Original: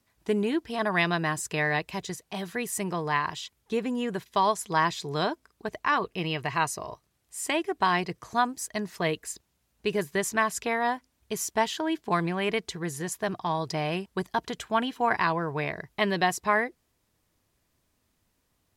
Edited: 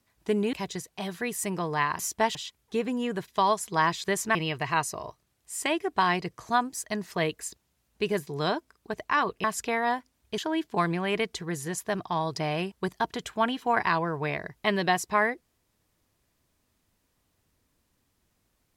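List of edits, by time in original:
0.53–1.87 s: delete
5.02–6.19 s: swap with 10.11–10.42 s
11.36–11.72 s: move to 3.33 s

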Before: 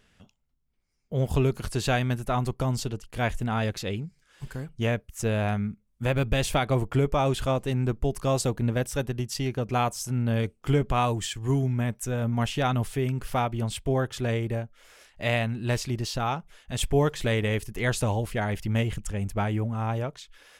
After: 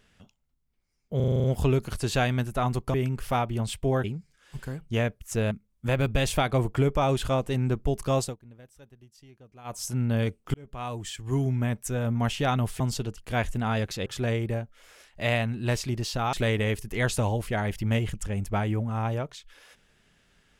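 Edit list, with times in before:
1.16 s: stutter 0.04 s, 8 plays
2.66–3.92 s: swap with 12.97–14.07 s
5.39–5.68 s: delete
8.35–9.99 s: dip -24 dB, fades 0.18 s
10.71–11.71 s: fade in linear
16.34–17.17 s: delete

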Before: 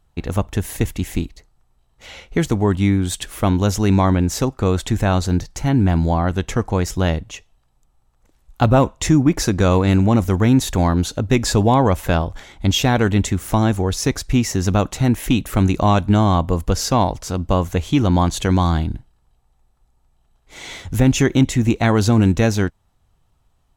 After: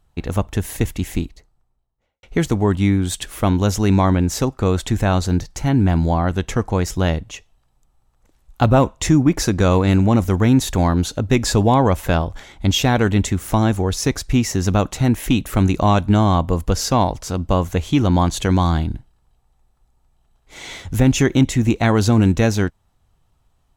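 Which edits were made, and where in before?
1.11–2.23 s: studio fade out

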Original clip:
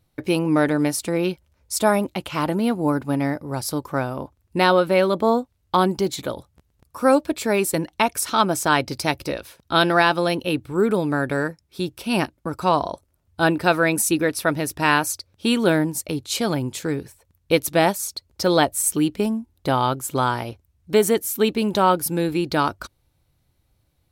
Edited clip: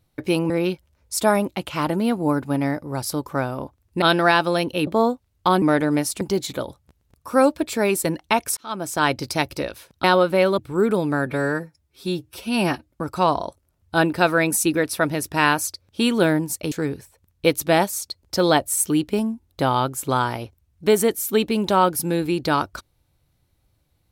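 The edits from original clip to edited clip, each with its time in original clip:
0.50–1.09 s: move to 5.90 s
4.61–5.15 s: swap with 9.73–10.58 s
8.26–8.80 s: fade in
11.26–12.35 s: stretch 1.5×
16.17–16.78 s: delete

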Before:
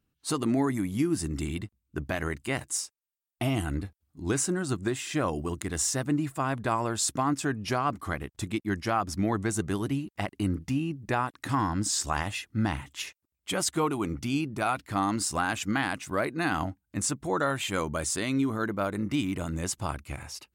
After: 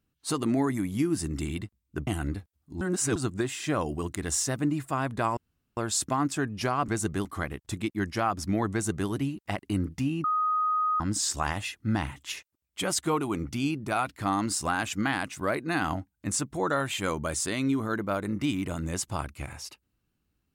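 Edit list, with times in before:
2.07–3.54 s: delete
4.28–4.63 s: reverse
6.84 s: insert room tone 0.40 s
9.42–9.79 s: copy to 7.95 s
10.94–11.70 s: bleep 1.25 kHz -23 dBFS

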